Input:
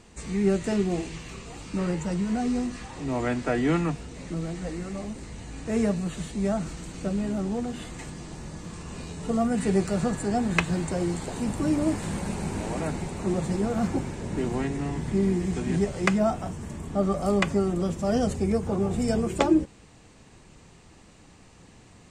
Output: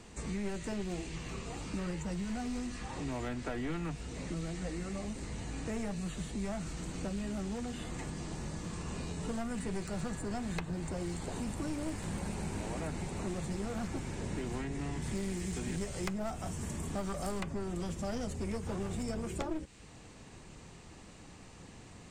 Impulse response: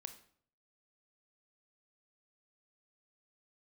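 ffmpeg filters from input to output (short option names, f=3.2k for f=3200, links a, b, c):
-filter_complex "[0:a]aeval=exprs='clip(val(0),-1,0.0596)':c=same,acrossover=split=87|1500[a][b][c];[a]acompressor=threshold=-41dB:ratio=4[d];[b]acompressor=threshold=-38dB:ratio=4[e];[c]acompressor=threshold=-48dB:ratio=4[f];[d][e][f]amix=inputs=3:normalize=0,asettb=1/sr,asplit=3[g][h][i];[g]atrim=end=15.024[j];[h]atrim=start=15.02:end=17.41,asetpts=PTS-STARTPTS,afade=t=in:d=0.004:c=qsin,afade=t=out:st=2.386:d=0.004:c=qsin,highshelf=f=6.1k:g=8.5[k];[i]atrim=start=17.406[l];[j][k]acrossfade=d=0.004:c1=hsin:c2=qsin[m];[m][l]acrossfade=d=0.004:c1=qsin:c2=hsin"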